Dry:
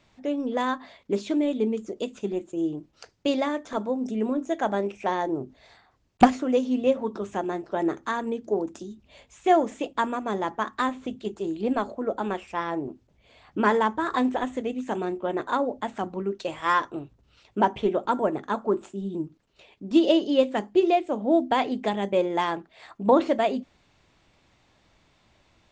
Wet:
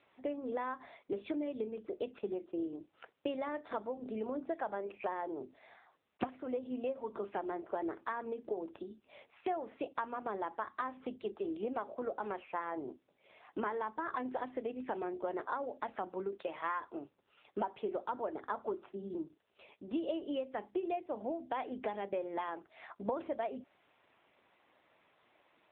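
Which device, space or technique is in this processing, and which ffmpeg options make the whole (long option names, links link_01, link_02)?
voicemail: -af "highpass=360,lowpass=2900,acompressor=threshold=-32dB:ratio=6,volume=-1.5dB" -ar 8000 -c:a libopencore_amrnb -b:a 7950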